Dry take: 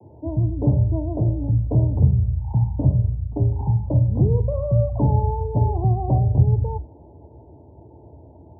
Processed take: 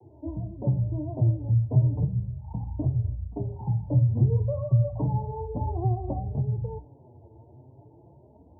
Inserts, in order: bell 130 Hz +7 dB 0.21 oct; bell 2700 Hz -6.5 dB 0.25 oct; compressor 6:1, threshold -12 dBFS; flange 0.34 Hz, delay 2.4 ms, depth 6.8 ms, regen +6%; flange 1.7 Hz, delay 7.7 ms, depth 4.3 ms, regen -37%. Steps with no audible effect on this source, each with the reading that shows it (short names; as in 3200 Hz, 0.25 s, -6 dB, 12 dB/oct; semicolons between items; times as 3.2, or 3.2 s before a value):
bell 2700 Hz: input band ends at 910 Hz